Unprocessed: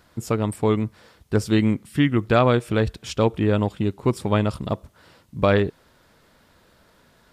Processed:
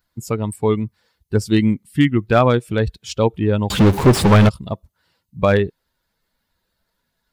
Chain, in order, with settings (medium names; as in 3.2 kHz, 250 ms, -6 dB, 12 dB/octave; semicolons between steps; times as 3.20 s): expander on every frequency bin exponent 1.5; 3.70–4.49 s: power-law waveshaper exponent 0.35; slew-rate limiter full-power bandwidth 270 Hz; trim +5 dB